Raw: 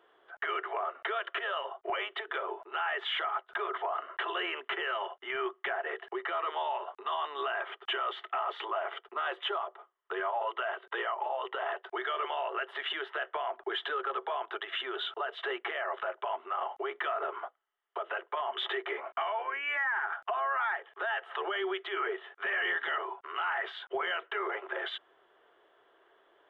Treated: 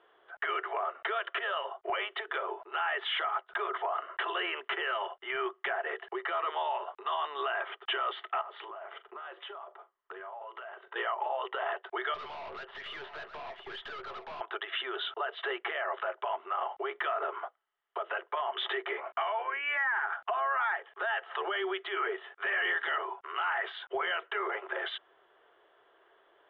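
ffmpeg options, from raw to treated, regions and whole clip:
-filter_complex "[0:a]asettb=1/sr,asplit=3[s0][s1][s2];[s0]atrim=end=8.414[s3];[s1]atrim=start=8.41:end=10.96,asetpts=PTS-STARTPTS,afade=t=in:d=0.004:c=qsin,afade=t=out:st=2.546:d=0.004:c=qsin,lowpass=f=2500:p=1,acompressor=threshold=0.00891:ratio=10:attack=3.2:release=140:knee=1:detection=peak,asplit=2[s4][s5];[s5]adelay=41,volume=0.2[s6];[s4][s6]amix=inputs=2:normalize=0,atrim=end_sample=112455[s7];[s2]atrim=start=10.956[s8];[s3][s7]acrossfade=d=0.004:c1=hsin:c2=qsin[s9];[s9][s8]acrossfade=d=0.004:c1=qsin:c2=hsin,asettb=1/sr,asplit=3[s10][s11][s12];[s10]atrim=end=12.144[s13];[s11]atrim=start=12.14:end=14.41,asetpts=PTS-STARTPTS,afade=t=in:d=0.004:c=qsin,afade=t=out:st=2.266:d=0.004:c=qsin,aeval=exprs='(tanh(112*val(0)+0.2)-tanh(0.2))/112':c=same,aecho=1:1:721:0.316,atrim=end_sample=100107[s14];[s12]atrim=start=14.406[s15];[s13][s14]acrossfade=d=0.004:c1=hsin:c2=qsin[s16];[s16][s15]acrossfade=d=0.004:c1=qsin:c2=hsin,lowpass=f=4100:w=0.5412,lowpass=f=4100:w=1.3066,equalizer=f=250:w=1.6:g=-4.5,volume=1.12"

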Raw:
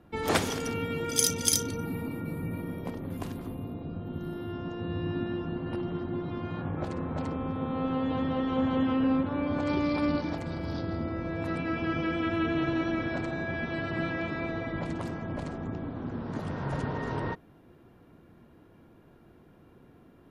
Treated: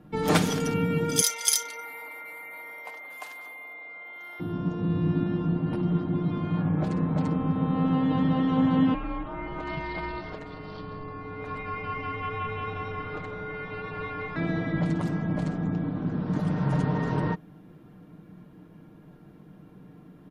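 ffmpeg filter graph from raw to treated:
-filter_complex "[0:a]asettb=1/sr,asplit=3[s0][s1][s2];[s0]atrim=end=1.214[s3];[s1]atrim=start=1.21:end=4.4,asetpts=PTS-STARTPTS,afade=t=in:d=0.004:c=qsin,afade=t=out:st=3.186:d=0.004:c=qsin,highpass=f=670:w=0.5412,highpass=f=670:w=1.3066,aeval=exprs='val(0)+0.00631*sin(2*PI*2100*n/s)':c=same[s4];[s2]atrim=start=4.396[s5];[s3][s4]acrossfade=d=0.004:c1=hsin:c2=qsin[s6];[s6][s5]acrossfade=d=0.004:c1=qsin:c2=hsin,asettb=1/sr,asplit=3[s7][s8][s9];[s7]atrim=end=8.944[s10];[s8]atrim=start=8.94:end=14.36,asetpts=PTS-STARTPTS,afade=t=in:d=0.004:c=qsin,afade=t=out:st=5.416:d=0.004:c=qsin,bandpass=f=1500:t=q:w=0.67,afreqshift=-230[s11];[s9]atrim=start=14.356[s12];[s10][s11]acrossfade=d=0.004:c1=hsin:c2=qsin[s13];[s13][s12]acrossfade=d=0.004:c1=qsin:c2=hsin,equalizer=f=190:w=2.3:g=11.5,aecho=1:1:6.6:0.51,volume=1.12"

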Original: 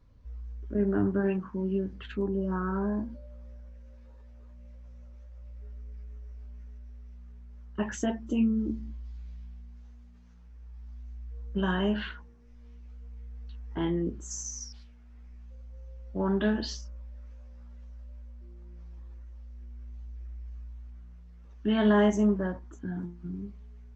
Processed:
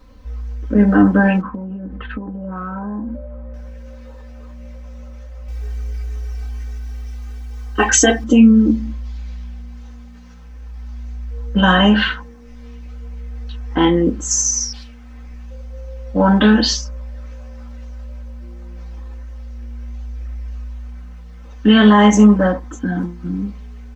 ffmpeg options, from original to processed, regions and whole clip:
-filter_complex "[0:a]asettb=1/sr,asplit=3[s0][s1][s2];[s0]atrim=end=1.414[s3];[s1]atrim=start=1.41:end=3.54,asetpts=PTS-STARTPTS,afade=t=in:d=0.004:c=qsin,afade=t=out:st=2.126:d=0.004:c=qsin,lowpass=1300,acompressor=threshold=0.0126:ratio=12:attack=3.2:release=140:knee=1:detection=peak[s4];[s2]atrim=start=3.536[s5];[s3][s4]acrossfade=d=0.004:c1=hsin:c2=qsin[s6];[s6][s5]acrossfade=d=0.004:c1=qsin:c2=hsin,asettb=1/sr,asplit=3[s7][s8][s9];[s7]atrim=end=5.484[s10];[s8]atrim=start=5.48:end=8.24,asetpts=PTS-STARTPTS,afade=t=in:d=0.004:c=qsin,afade=t=out:st=2.756:d=0.004:c=qsin,highshelf=f=4000:g=10.5,aecho=1:1:2.6:0.92,atrim=end_sample=121716[s11];[s9]atrim=start=8.236[s12];[s10][s11]acrossfade=d=0.004:c1=hsin:c2=qsin[s13];[s13][s12]acrossfade=d=0.004:c1=qsin:c2=hsin,lowshelf=f=260:g=-8,aecho=1:1:3.9:0.95,alimiter=level_in=8.41:limit=0.891:release=50:level=0:latency=1,volume=0.891"

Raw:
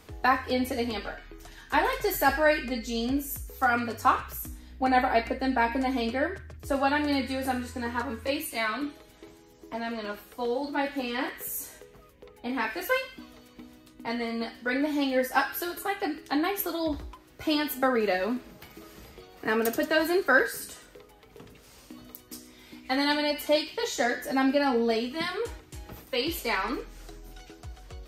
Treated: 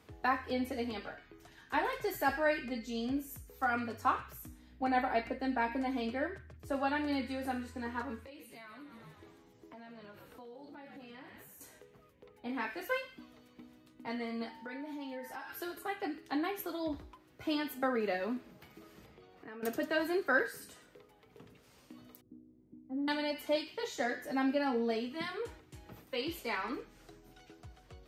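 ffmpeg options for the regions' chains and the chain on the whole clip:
-filter_complex "[0:a]asettb=1/sr,asplit=3[s0][s1][s2];[s0]atrim=end=8.204[s3];[s1]atrim=start=8.2:end=11.61,asetpts=PTS-STARTPTS,afade=t=in:d=0.004:c=qsin,afade=t=out:st=3.406:d=0.004:c=qsin,asplit=7[s4][s5][s6][s7][s8][s9][s10];[s5]adelay=123,afreqshift=-67,volume=0.211[s11];[s6]adelay=246,afreqshift=-134,volume=0.127[s12];[s7]adelay=369,afreqshift=-201,volume=0.0759[s13];[s8]adelay=492,afreqshift=-268,volume=0.0457[s14];[s9]adelay=615,afreqshift=-335,volume=0.0275[s15];[s10]adelay=738,afreqshift=-402,volume=0.0164[s16];[s4][s11][s12][s13][s14][s15][s16]amix=inputs=7:normalize=0,atrim=end_sample=150381,acompressor=threshold=0.00891:ratio=6:attack=3.2:release=140:knee=1:detection=peak[s17];[s2]atrim=start=11.606[s18];[s3][s17]acrossfade=d=0.004:c1=hsin:c2=qsin[s19];[s19][s18]acrossfade=d=0.004:c1=qsin:c2=hsin,asettb=1/sr,asplit=3[s20][s21][s22];[s20]atrim=end=14.494[s23];[s21]atrim=start=14.49:end=15.5,asetpts=PTS-STARTPTS,afade=t=in:d=0.004:c=qsin,afade=t=out:st=1.006:d=0.004:c=qsin,acompressor=threshold=0.0224:ratio=6:attack=3.2:release=140:knee=1:detection=peak,aeval=exprs='val(0)+0.00631*sin(2*PI*900*n/s)':c=same[s24];[s22]atrim=start=15.496[s25];[s23][s24]acrossfade=d=0.004:c1=hsin:c2=qsin[s26];[s26][s25]acrossfade=d=0.004:c1=qsin:c2=hsin,asettb=1/sr,asplit=3[s27][s28][s29];[s27]atrim=end=19.064[s30];[s28]atrim=start=19.06:end=19.63,asetpts=PTS-STARTPTS,afade=t=in:d=0.004:c=qsin,afade=t=out:st=0.566:d=0.004:c=qsin,lowpass=f=3600:p=1,acompressor=threshold=0.00631:ratio=2.5:attack=3.2:release=140:knee=1:detection=peak[s31];[s29]atrim=start=19.626[s32];[s30][s31]acrossfade=d=0.004:c1=hsin:c2=qsin[s33];[s33][s32]acrossfade=d=0.004:c1=qsin:c2=hsin,asettb=1/sr,asplit=3[s34][s35][s36];[s34]atrim=end=22.214[s37];[s35]atrim=start=22.21:end=23.08,asetpts=PTS-STARTPTS,afade=t=in:d=0.004:c=qsin,afade=t=out:st=0.866:d=0.004:c=qsin,asuperpass=centerf=210:order=4:qfactor=0.87,aeval=exprs='val(0)+0.000794*(sin(2*PI*50*n/s)+sin(2*PI*2*50*n/s)/2+sin(2*PI*3*50*n/s)/3+sin(2*PI*4*50*n/s)/4+sin(2*PI*5*50*n/s)/5)':c=same,asplit=2[s38][s39];[s39]adelay=42,volume=0.224[s40];[s38][s40]amix=inputs=2:normalize=0,atrim=end_sample=38367[s41];[s36]atrim=start=23.076[s42];[s37][s41]acrossfade=d=0.004:c1=hsin:c2=qsin[s43];[s43][s42]acrossfade=d=0.004:c1=qsin:c2=hsin,highpass=93,bass=f=250:g=3,treble=f=4000:g=-5,volume=0.398"

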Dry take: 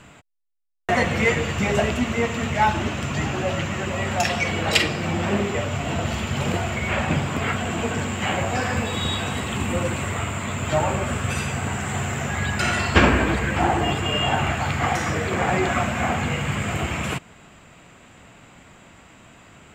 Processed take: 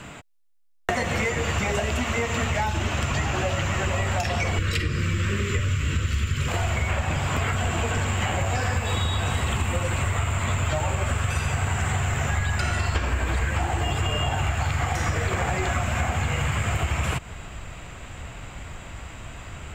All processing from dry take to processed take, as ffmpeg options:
-filter_complex "[0:a]asettb=1/sr,asplit=3[s0][s1][s2];[s0]atrim=end=4.584[s3];[s1]atrim=start=4.58:end=6.48,asetpts=PTS-STARTPTS,afade=t=in:d=0.004:c=qsin,afade=t=out:st=1.896:d=0.004:c=qsin,asuperstop=centerf=760:order=4:qfactor=0.87,lowshelf=f=350:g=10.5[s4];[s2]atrim=start=6.476[s5];[s3][s4]acrossfade=d=0.004:c1=hsin:c2=qsin[s6];[s6][s5]acrossfade=d=0.004:c1=qsin:c2=hsin,acrossover=split=600|1700|4700[s7][s8][s9][s10];[s7]acompressor=threshold=0.0316:ratio=4[s11];[s8]acompressor=threshold=0.0251:ratio=4[s12];[s9]acompressor=threshold=0.0141:ratio=4[s13];[s10]acompressor=threshold=0.01:ratio=4[s14];[s11][s12][s13][s14]amix=inputs=4:normalize=0,asubboost=boost=7:cutoff=76,acompressor=threshold=0.0398:ratio=6,volume=2.24"

